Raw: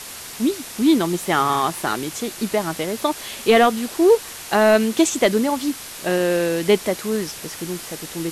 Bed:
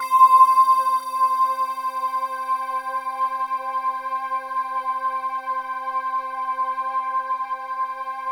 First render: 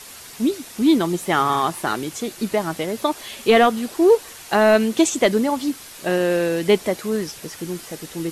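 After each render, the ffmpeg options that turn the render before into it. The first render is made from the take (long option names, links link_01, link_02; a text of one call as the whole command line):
ffmpeg -i in.wav -af "afftdn=noise_reduction=6:noise_floor=-36" out.wav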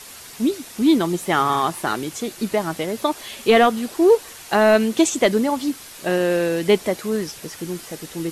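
ffmpeg -i in.wav -af anull out.wav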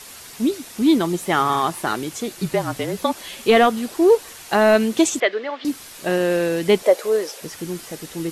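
ffmpeg -i in.wav -filter_complex "[0:a]asettb=1/sr,asplit=3[link_01][link_02][link_03];[link_01]atrim=end=2.404[link_04];[link_02]atrim=start=2.4:end=3.38,asetpts=PTS-STARTPTS,afade=type=in:duration=0.004:curve=qsin,afade=type=out:start_time=0.976:duration=0.004:curve=qsin,afreqshift=-38[link_05];[link_03]atrim=start=3.376[link_06];[link_04][link_05]acrossfade=duration=0.004:curve1=hsin:curve2=qsin[link_07];[link_07][link_06]acrossfade=duration=0.004:curve1=qsin:curve2=hsin,asettb=1/sr,asplit=3[link_08][link_09][link_10];[link_08]atrim=end=5.204[link_11];[link_09]atrim=start=5.2:end=5.65,asetpts=PTS-STARTPTS,afade=type=in:duration=0.004:curve=qsin,afade=type=out:start_time=0.446:duration=0.004:curve=qsin,highpass=frequency=430:width=0.5412,highpass=frequency=430:width=1.3066,equalizer=frequency=540:width_type=q:width=4:gain=-3,equalizer=frequency=910:width_type=q:width=4:gain=-9,equalizer=frequency=1800:width_type=q:width=4:gain=5,lowpass=frequency=3700:width=0.5412,lowpass=frequency=3700:width=1.3066[link_12];[link_10]atrim=start=5.646[link_13];[link_11][link_12]acrossfade=duration=0.004:curve1=hsin:curve2=qsin[link_14];[link_14][link_13]acrossfade=duration=0.004:curve1=qsin:curve2=hsin,asettb=1/sr,asplit=3[link_15][link_16][link_17];[link_15]atrim=end=6.834[link_18];[link_16]atrim=start=6.83:end=7.41,asetpts=PTS-STARTPTS,afade=type=in:duration=0.004:curve=qsin,afade=type=out:start_time=0.576:duration=0.004:curve=qsin,highpass=frequency=510:width_type=q:width=3.7[link_19];[link_17]atrim=start=7.406[link_20];[link_18][link_19]acrossfade=duration=0.004:curve1=hsin:curve2=qsin[link_21];[link_21][link_20]acrossfade=duration=0.004:curve1=qsin:curve2=hsin" out.wav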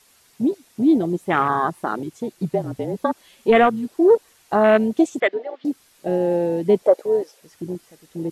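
ffmpeg -i in.wav -af "afwtdn=0.1" out.wav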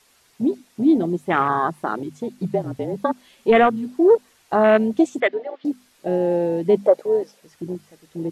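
ffmpeg -i in.wav -af "highshelf=frequency=7300:gain=-6,bandreject=frequency=50:width_type=h:width=6,bandreject=frequency=100:width_type=h:width=6,bandreject=frequency=150:width_type=h:width=6,bandreject=frequency=200:width_type=h:width=6,bandreject=frequency=250:width_type=h:width=6" out.wav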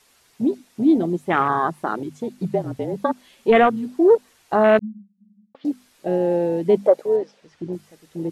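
ffmpeg -i in.wav -filter_complex "[0:a]asettb=1/sr,asplit=3[link_01][link_02][link_03];[link_01]atrim=end=4.794[link_04];[link_02]atrim=start=4.79:end=5.55,asetpts=PTS-STARTPTS,afade=type=in:duration=0.004:curve=qsin,afade=type=out:start_time=0.756:duration=0.004:curve=qsin,asuperpass=centerf=200:order=12:qfactor=6.7[link_05];[link_03]atrim=start=5.546[link_06];[link_04][link_05]acrossfade=duration=0.004:curve1=hsin:curve2=qsin[link_07];[link_07][link_06]acrossfade=duration=0.004:curve1=qsin:curve2=hsin,asettb=1/sr,asplit=3[link_08][link_09][link_10];[link_08]atrim=end=7.164[link_11];[link_09]atrim=start=7.16:end=7.73,asetpts=PTS-STARTPTS,afade=type=in:duration=0.004:curve=qsin,afade=type=out:start_time=0.566:duration=0.004:curve=qsin,lowpass=4800[link_12];[link_10]atrim=start=7.726[link_13];[link_11][link_12]acrossfade=duration=0.004:curve1=hsin:curve2=qsin[link_14];[link_14][link_13]acrossfade=duration=0.004:curve1=qsin:curve2=hsin" out.wav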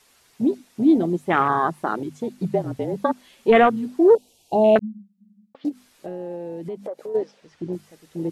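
ffmpeg -i in.wav -filter_complex "[0:a]asettb=1/sr,asplit=3[link_01][link_02][link_03];[link_01]atrim=end=4.154[link_04];[link_02]atrim=start=4.15:end=4.76,asetpts=PTS-STARTPTS,afade=type=in:duration=0.004:curve=qsin,afade=type=out:start_time=0.606:duration=0.004:curve=qsin,asuperstop=centerf=1500:order=8:qfactor=0.83[link_05];[link_03]atrim=start=4.756[link_06];[link_04][link_05]acrossfade=duration=0.004:curve1=hsin:curve2=qsin[link_07];[link_07][link_06]acrossfade=duration=0.004:curve1=qsin:curve2=hsin,asplit=3[link_08][link_09][link_10];[link_08]afade=type=out:start_time=5.68:duration=0.02[link_11];[link_09]acompressor=threshold=-30dB:ratio=5:attack=3.2:release=140:knee=1:detection=peak,afade=type=in:start_time=5.68:duration=0.02,afade=type=out:start_time=7.14:duration=0.02[link_12];[link_10]afade=type=in:start_time=7.14:duration=0.02[link_13];[link_11][link_12][link_13]amix=inputs=3:normalize=0" out.wav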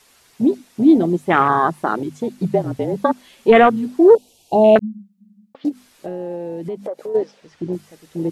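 ffmpeg -i in.wav -af "volume=4.5dB,alimiter=limit=-2dB:level=0:latency=1" out.wav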